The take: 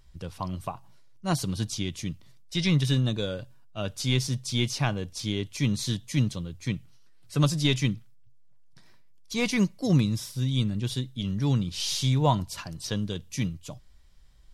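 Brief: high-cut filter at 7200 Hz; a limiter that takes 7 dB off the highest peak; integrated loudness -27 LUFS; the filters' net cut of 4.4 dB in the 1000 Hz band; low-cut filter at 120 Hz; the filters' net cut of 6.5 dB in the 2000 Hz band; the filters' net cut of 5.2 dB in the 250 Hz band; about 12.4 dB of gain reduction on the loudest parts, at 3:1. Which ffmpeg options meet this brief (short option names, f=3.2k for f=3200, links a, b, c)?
-af "highpass=120,lowpass=7.2k,equalizer=f=250:t=o:g=-6.5,equalizer=f=1k:t=o:g=-3.5,equalizer=f=2k:t=o:g=-7.5,acompressor=threshold=-39dB:ratio=3,volume=15dB,alimiter=limit=-16dB:level=0:latency=1"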